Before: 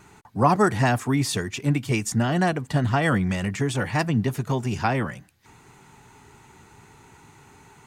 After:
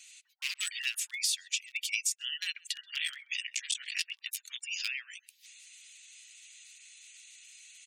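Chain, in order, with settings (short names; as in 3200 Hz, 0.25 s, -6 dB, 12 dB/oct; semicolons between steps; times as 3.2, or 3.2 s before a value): 2.82–4.58 cycle switcher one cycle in 3, muted; spectral gate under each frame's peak -30 dB strong; hard clip -13.5 dBFS, distortion -19 dB; steep high-pass 2600 Hz 36 dB/oct; speakerphone echo 0.13 s, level -26 dB; compressor 4:1, threshold -37 dBFS, peak gain reduction 10.5 dB; gain +8 dB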